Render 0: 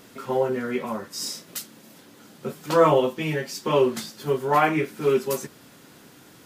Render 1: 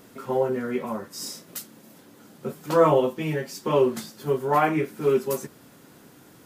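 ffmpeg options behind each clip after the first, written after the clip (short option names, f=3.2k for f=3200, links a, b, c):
-af "equalizer=f=3.6k:t=o:w=2.5:g=-5.5"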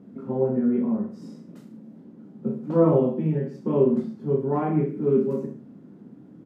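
-filter_complex "[0:a]bandpass=f=210:t=q:w=2.4:csg=0,asplit=2[a][b];[b]aecho=0:1:30|63|99.3|139.2|183.2:0.631|0.398|0.251|0.158|0.1[c];[a][c]amix=inputs=2:normalize=0,volume=9dB"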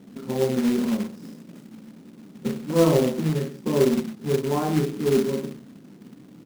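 -af "acrusher=bits=3:mode=log:mix=0:aa=0.000001"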